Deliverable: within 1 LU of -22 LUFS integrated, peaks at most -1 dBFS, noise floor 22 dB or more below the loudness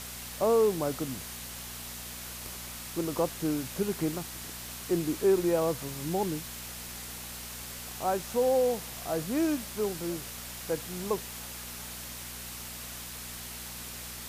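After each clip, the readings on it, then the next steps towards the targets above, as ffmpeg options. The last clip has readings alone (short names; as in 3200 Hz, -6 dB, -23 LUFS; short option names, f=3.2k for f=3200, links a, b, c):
hum 60 Hz; harmonics up to 240 Hz; hum level -46 dBFS; noise floor -42 dBFS; noise floor target -54 dBFS; loudness -32.0 LUFS; peak -15.0 dBFS; loudness target -22.0 LUFS
-> -af "bandreject=f=60:t=h:w=4,bandreject=f=120:t=h:w=4,bandreject=f=180:t=h:w=4,bandreject=f=240:t=h:w=4"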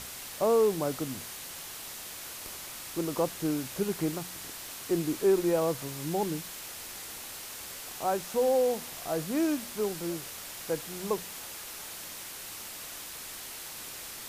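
hum none; noise floor -42 dBFS; noise floor target -55 dBFS
-> -af "afftdn=nr=13:nf=-42"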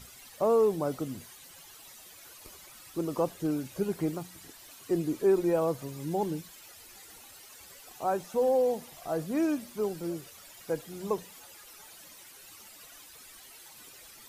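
noise floor -52 dBFS; noise floor target -53 dBFS
-> -af "afftdn=nr=6:nf=-52"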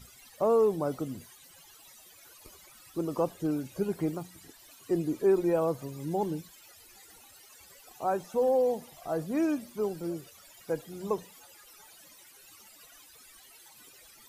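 noise floor -55 dBFS; loudness -30.5 LUFS; peak -15.5 dBFS; loudness target -22.0 LUFS
-> -af "volume=8.5dB"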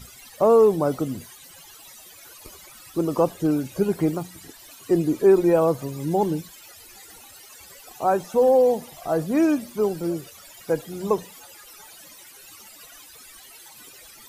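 loudness -22.0 LUFS; peak -7.0 dBFS; noise floor -47 dBFS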